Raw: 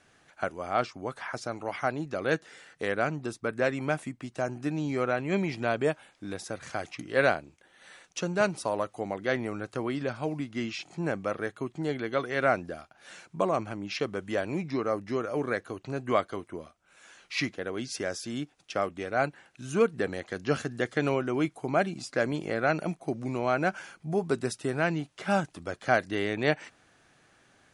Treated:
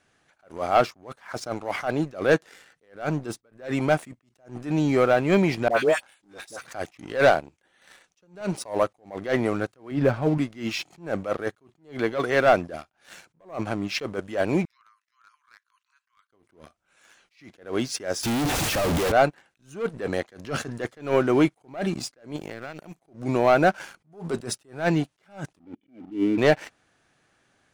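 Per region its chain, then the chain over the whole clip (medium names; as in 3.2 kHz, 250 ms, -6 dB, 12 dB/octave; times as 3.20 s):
5.68–6.73 s: high-pass 420 Hz 6 dB/octave + treble shelf 6.8 kHz +7 dB + phase dispersion highs, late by 88 ms, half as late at 1 kHz
9.91–10.38 s: low-pass 2 kHz 6 dB/octave + bass shelf 93 Hz +11.5 dB + comb 7.2 ms, depth 30%
14.65–16.32 s: compression 12:1, threshold -41 dBFS + rippled Chebyshev high-pass 990 Hz, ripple 3 dB
18.23–19.12 s: one-bit comparator + peaking EQ 88 Hz +6 dB 2.2 oct
22.36–23.01 s: peaking EQ 7.9 kHz +7.5 dB 1.1 oct + compression 10:1, threshold -38 dBFS + decimation joined by straight lines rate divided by 2×
25.59–26.38 s: peaking EQ 290 Hz +11 dB 1.4 oct + upward compressor, threshold -35 dBFS + cascade formant filter i
whole clip: dynamic bell 610 Hz, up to +4 dB, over -38 dBFS, Q 0.89; waveshaping leveller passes 2; attacks held to a fixed rise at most 170 dB/s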